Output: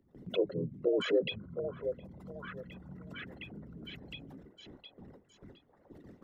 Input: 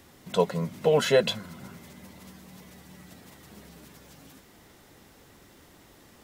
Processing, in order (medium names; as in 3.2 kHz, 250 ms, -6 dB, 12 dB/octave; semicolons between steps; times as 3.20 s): resonances exaggerated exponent 3; gate with hold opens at -46 dBFS; harmony voices -5 st -5 dB; on a send: repeats whose band climbs or falls 713 ms, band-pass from 710 Hz, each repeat 0.7 oct, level -6 dB; on the sum: three bands compressed up and down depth 40%; trim -5 dB